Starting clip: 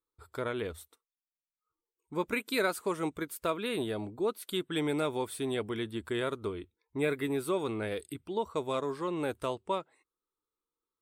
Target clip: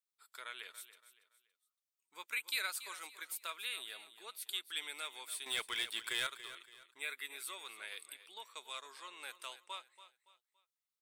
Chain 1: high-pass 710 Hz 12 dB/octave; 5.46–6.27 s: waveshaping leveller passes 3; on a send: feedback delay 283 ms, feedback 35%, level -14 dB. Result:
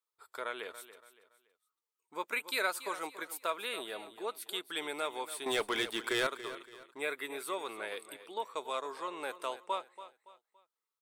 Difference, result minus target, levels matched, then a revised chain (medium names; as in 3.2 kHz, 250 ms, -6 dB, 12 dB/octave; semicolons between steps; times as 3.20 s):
1 kHz band +6.5 dB
high-pass 2.2 kHz 12 dB/octave; 5.46–6.27 s: waveshaping leveller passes 3; on a send: feedback delay 283 ms, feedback 35%, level -14 dB